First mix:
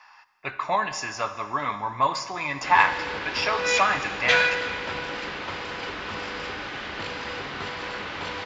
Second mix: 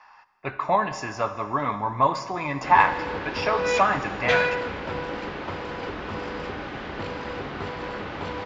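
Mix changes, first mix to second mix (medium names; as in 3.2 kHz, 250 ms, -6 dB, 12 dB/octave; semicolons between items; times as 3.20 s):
background: send -10.5 dB; master: add tilt shelf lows +7 dB, about 1.3 kHz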